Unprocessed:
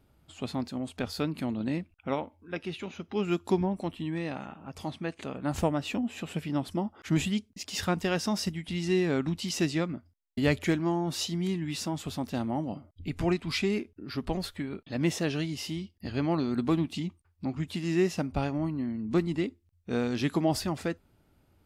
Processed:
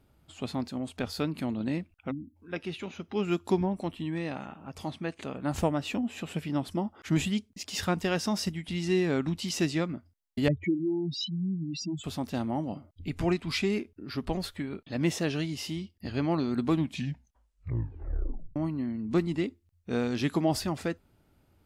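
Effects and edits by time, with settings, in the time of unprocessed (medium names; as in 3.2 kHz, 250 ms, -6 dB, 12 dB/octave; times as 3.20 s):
2.11–2.36 s: spectral selection erased 340–10000 Hz
10.48–12.04 s: spectral contrast enhancement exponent 3.8
16.74 s: tape stop 1.82 s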